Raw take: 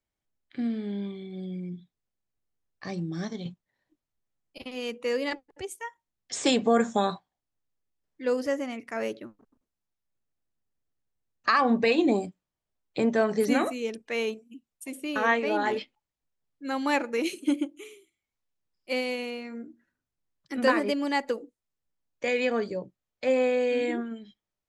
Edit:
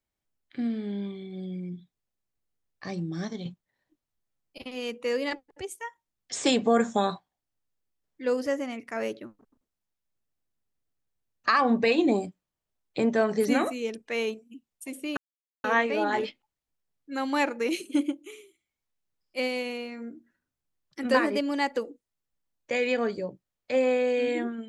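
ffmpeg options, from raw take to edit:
-filter_complex "[0:a]asplit=2[s0][s1];[s0]atrim=end=15.17,asetpts=PTS-STARTPTS,afade=t=out:st=15.166:d=0.004:c=hsin,apad=pad_dur=0.47[s2];[s1]atrim=start=15.17,asetpts=PTS-STARTPTS,afade=t=in:d=0.004:c=hsin[s3];[s2][s3]concat=n=2:v=0:a=1"

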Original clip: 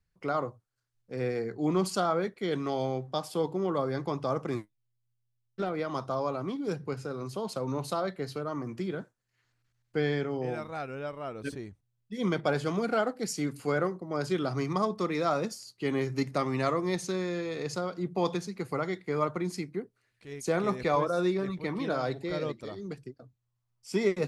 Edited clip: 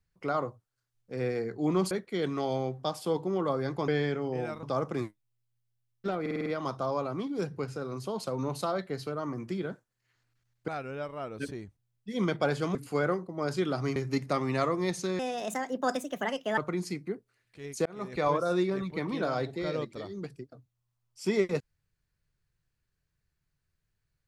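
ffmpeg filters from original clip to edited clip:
-filter_complex "[0:a]asplit=15[s0][s1][s2][s3][s4][s5][s6][s7][s8][s9][s10][s11][s12][s13][s14];[s0]atrim=end=1.912[s15];[s1]atrim=start=2.198:end=4.172[s16];[s2]atrim=start=9.968:end=10.722[s17];[s3]atrim=start=4.168:end=5.802[s18];[s4]atrim=start=5.748:end=5.802[s19];[s5]atrim=start=5.748:end=5.802[s20];[s6]atrim=start=5.748:end=5.802[s21];[s7]atrim=start=5.748:end=5.802[s22];[s8]atrim=start=5.748:end=9.972[s23];[s9]atrim=start=10.718:end=12.792[s24];[s10]atrim=start=13.478:end=14.692[s25];[s11]atrim=start=16.008:end=17.244[s26];[s12]atrim=start=17.24:end=19.25,asetpts=PTS-STARTPTS,asetrate=63945,aresample=44100[s27];[s13]atrim=start=19.246:end=20.53,asetpts=PTS-STARTPTS,afade=t=out:st=1.28:d=0.004:c=hsin[s28];[s14]atrim=start=20.53,asetpts=PTS-STARTPTS,afade=t=in:d=0.44[s29];[s15][s16]acrossfade=d=0.004:c1=hsin:c2=hsin[s30];[s30][s17]acrossfade=d=0.004:c1=hsin:c2=hsin[s31];[s31][s18]acrossfade=d=0.004:c1=hsin:c2=hsin[s32];[s32][s19]acrossfade=d=0.004:c1=hsin:c2=hsin[s33];[s33][s20]acrossfade=d=0.004:c1=hsin:c2=hsin[s34];[s34][s21]acrossfade=d=0.004:c1=hsin:c2=hsin[s35];[s35][s22]acrossfade=d=0.004:c1=hsin:c2=hsin[s36];[s36][s23]acrossfade=d=0.004:c1=hsin:c2=hsin[s37];[s37][s24]acrossfade=d=0.004:c1=hsin:c2=hsin[s38];[s38][s25]acrossfade=d=0.004:c1=hsin:c2=hsin[s39];[s39][s26]acrossfade=d=0.004:c1=hsin:c2=hsin[s40];[s40][s27]acrossfade=d=0.004:c1=hsin:c2=hsin[s41];[s28][s29]concat=n=2:v=0:a=1[s42];[s41][s42]acrossfade=d=0.004:c1=hsin:c2=hsin"

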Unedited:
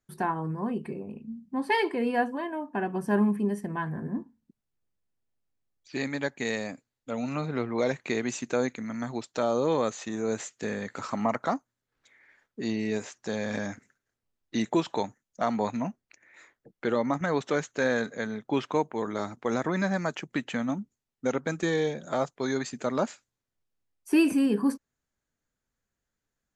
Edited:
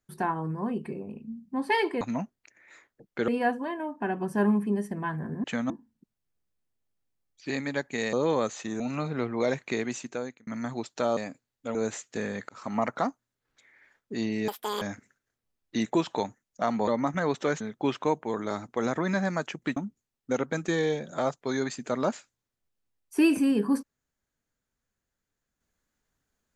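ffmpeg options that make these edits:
-filter_complex "[0:a]asplit=16[s0][s1][s2][s3][s4][s5][s6][s7][s8][s9][s10][s11][s12][s13][s14][s15];[s0]atrim=end=2.012[s16];[s1]atrim=start=15.668:end=16.942[s17];[s2]atrim=start=2.008:end=4.172[s18];[s3]atrim=start=20.448:end=20.712[s19];[s4]atrim=start=4.168:end=6.602[s20];[s5]atrim=start=9.548:end=10.222[s21];[s6]atrim=start=7.178:end=8.85,asetpts=PTS-STARTPTS,afade=t=out:st=0.732:d=0.94:c=qsin[s22];[s7]atrim=start=8.85:end=9.552,asetpts=PTS-STARTPTS,afade=t=in:d=0.004:c=hsin[s23];[s8]atrim=start=6.598:end=7.182[s24];[s9]atrim=start=10.218:end=10.96,asetpts=PTS-STARTPTS,afade=t=out:st=0.738:d=0.004:c=hsin[s25];[s10]atrim=start=10.96:end=12.954,asetpts=PTS-STARTPTS,afade=t=in:d=0.42:c=qsin[s26];[s11]atrim=start=12.95:end=13.61,asetpts=PTS-STARTPTS,asetrate=86877,aresample=44100[s27];[s12]atrim=start=13.606:end=15.672[s28];[s13]atrim=start=16.938:end=17.672[s29];[s14]atrim=start=18.288:end=20.452[s30];[s15]atrim=start=20.708[s31];[s16][s17]acrossfade=d=0.004:c1=hsin:c2=hsin[s32];[s32][s18]acrossfade=d=0.004:c1=hsin:c2=hsin[s33];[s33][s19]acrossfade=d=0.004:c1=hsin:c2=hsin[s34];[s34][s20]acrossfade=d=0.004:c1=hsin:c2=hsin[s35];[s35][s21]acrossfade=d=0.004:c1=hsin:c2=hsin[s36];[s22][s23]concat=n=2:v=0:a=1[s37];[s36][s37]acrossfade=d=0.004:c1=hsin:c2=hsin[s38];[s38][s24]acrossfade=d=0.004:c1=hsin:c2=hsin[s39];[s25][s26]concat=n=2:v=0:a=1[s40];[s39][s40]acrossfade=d=0.004:c1=hsin:c2=hsin[s41];[s41][s27]acrossfade=d=0.004:c1=hsin:c2=hsin[s42];[s42][s28]acrossfade=d=0.004:c1=hsin:c2=hsin[s43];[s43][s29]acrossfade=d=0.004:c1=hsin:c2=hsin[s44];[s44][s30]acrossfade=d=0.004:c1=hsin:c2=hsin[s45];[s45][s31]acrossfade=d=0.004:c1=hsin:c2=hsin"

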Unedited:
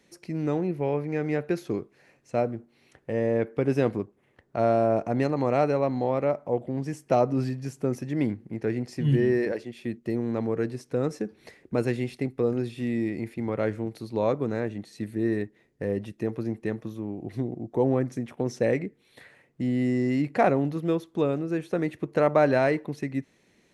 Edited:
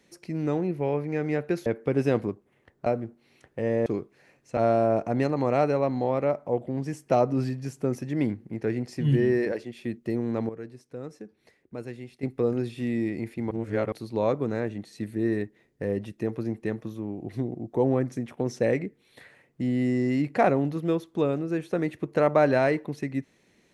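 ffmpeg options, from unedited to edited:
-filter_complex "[0:a]asplit=9[s0][s1][s2][s3][s4][s5][s6][s7][s8];[s0]atrim=end=1.662[s9];[s1]atrim=start=3.368:end=4.572[s10];[s2]atrim=start=2.368:end=3.372[s11];[s3]atrim=start=1.658:end=2.372[s12];[s4]atrim=start=4.568:end=10.492[s13];[s5]atrim=start=10.488:end=12.232,asetpts=PTS-STARTPTS,volume=0.266[s14];[s6]atrim=start=12.228:end=13.512[s15];[s7]atrim=start=13.508:end=13.922,asetpts=PTS-STARTPTS,areverse[s16];[s8]atrim=start=13.918[s17];[s9][s10]acrossfade=d=0.004:c1=hsin:c2=hsin[s18];[s18][s11]acrossfade=d=0.004:c1=hsin:c2=hsin[s19];[s19][s12]acrossfade=d=0.004:c1=hsin:c2=hsin[s20];[s20][s13]acrossfade=d=0.004:c1=hsin:c2=hsin[s21];[s21][s14]acrossfade=d=0.004:c1=hsin:c2=hsin[s22];[s22][s15]acrossfade=d=0.004:c1=hsin:c2=hsin[s23];[s23][s16]acrossfade=d=0.004:c1=hsin:c2=hsin[s24];[s24][s17]acrossfade=d=0.004:c1=hsin:c2=hsin"

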